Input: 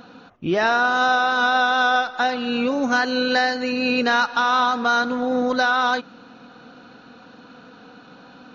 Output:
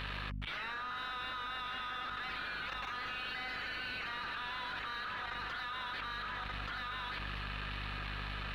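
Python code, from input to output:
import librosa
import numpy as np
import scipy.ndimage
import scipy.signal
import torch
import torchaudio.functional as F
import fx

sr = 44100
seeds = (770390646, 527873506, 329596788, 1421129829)

y = scipy.signal.sosfilt(scipy.signal.cheby1(4, 1.0, 1400.0, 'highpass', fs=sr, output='sos'), x)
y = fx.spec_gate(y, sr, threshold_db=-10, keep='weak')
y = fx.level_steps(y, sr, step_db=24)
y = fx.leveller(y, sr, passes=5)
y = fx.add_hum(y, sr, base_hz=50, snr_db=26)
y = fx.air_absorb(y, sr, metres=480.0)
y = y + 10.0 ** (-8.5 / 20.0) * np.pad(y, (int(1179 * sr / 1000.0), 0))[:len(y)]
y = fx.env_flatten(y, sr, amount_pct=100)
y = y * 10.0 ** (1.0 / 20.0)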